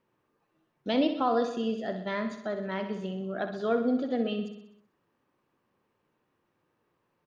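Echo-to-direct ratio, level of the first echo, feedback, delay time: -7.0 dB, -9.0 dB, 59%, 63 ms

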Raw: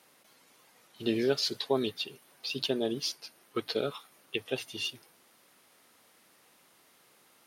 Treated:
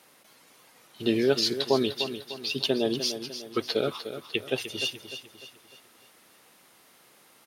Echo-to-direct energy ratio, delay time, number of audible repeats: -9.5 dB, 0.3 s, 4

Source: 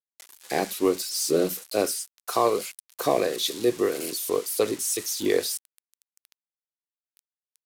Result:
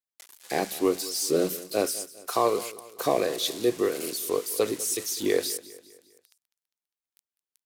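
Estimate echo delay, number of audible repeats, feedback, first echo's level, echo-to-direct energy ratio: 0.201 s, 3, 45%, -18.0 dB, -17.0 dB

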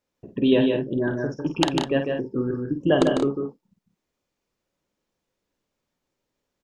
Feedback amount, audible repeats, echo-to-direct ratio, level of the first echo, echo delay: no steady repeat, 3, -2.0 dB, -7.5 dB, 50 ms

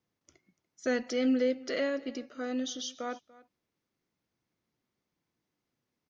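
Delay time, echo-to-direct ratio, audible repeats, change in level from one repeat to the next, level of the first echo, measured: 0.29 s, -21.0 dB, 1, no steady repeat, -21.0 dB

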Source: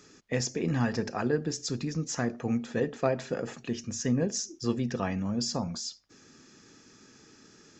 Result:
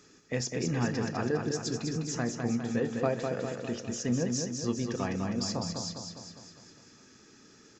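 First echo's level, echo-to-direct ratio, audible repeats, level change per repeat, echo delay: -5.0 dB, -3.5 dB, 6, -5.0 dB, 0.203 s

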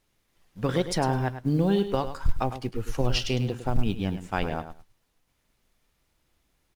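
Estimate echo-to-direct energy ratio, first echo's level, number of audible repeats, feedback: -11.0 dB, -11.0 dB, 2, 16%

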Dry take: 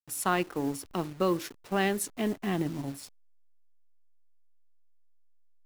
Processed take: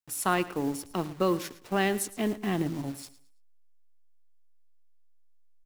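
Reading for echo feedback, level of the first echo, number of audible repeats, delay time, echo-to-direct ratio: 29%, -17.0 dB, 2, 0.11 s, -16.5 dB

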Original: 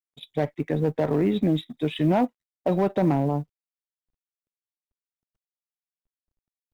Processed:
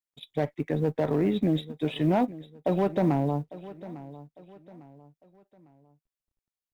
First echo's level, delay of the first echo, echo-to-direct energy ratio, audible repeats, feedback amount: -17.0 dB, 0.852 s, -16.5 dB, 3, 38%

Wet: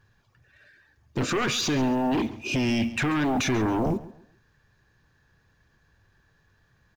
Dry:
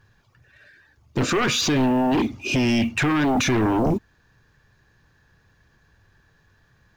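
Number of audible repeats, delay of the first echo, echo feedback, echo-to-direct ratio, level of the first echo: 2, 0.137 s, 29%, -16.5 dB, -17.0 dB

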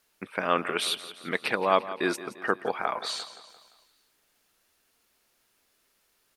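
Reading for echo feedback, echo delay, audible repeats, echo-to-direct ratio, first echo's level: 51%, 0.173 s, 4, -13.0 dB, -14.5 dB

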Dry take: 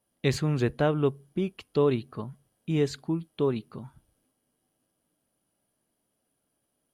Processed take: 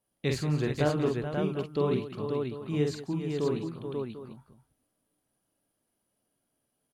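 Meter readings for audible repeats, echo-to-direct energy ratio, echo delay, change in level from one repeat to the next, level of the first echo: 5, 0.0 dB, 47 ms, no steady repeat, -4.5 dB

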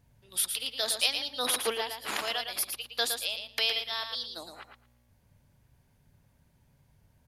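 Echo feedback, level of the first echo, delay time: 15%, -7.0 dB, 0.113 s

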